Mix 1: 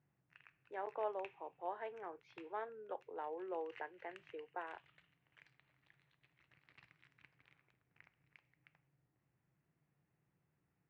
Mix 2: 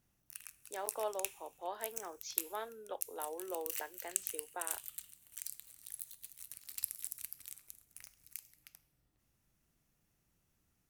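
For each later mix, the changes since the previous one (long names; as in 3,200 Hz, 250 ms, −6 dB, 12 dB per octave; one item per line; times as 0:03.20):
master: remove loudspeaker in its box 130–2,200 Hz, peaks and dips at 140 Hz +8 dB, 230 Hz −7 dB, 600 Hz −3 dB, 1,300 Hz −4 dB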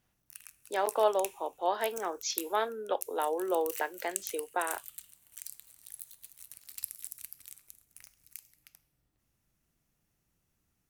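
speech +12.0 dB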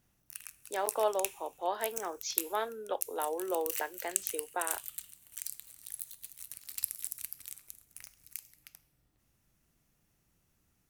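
speech −3.5 dB
background +4.0 dB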